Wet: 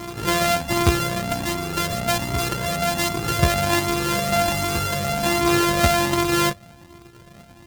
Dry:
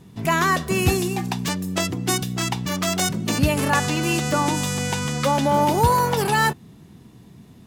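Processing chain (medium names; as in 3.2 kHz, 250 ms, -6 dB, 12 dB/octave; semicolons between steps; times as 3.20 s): sorted samples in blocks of 128 samples; reverse echo 1087 ms -8.5 dB; Shepard-style flanger rising 1.3 Hz; trim +5 dB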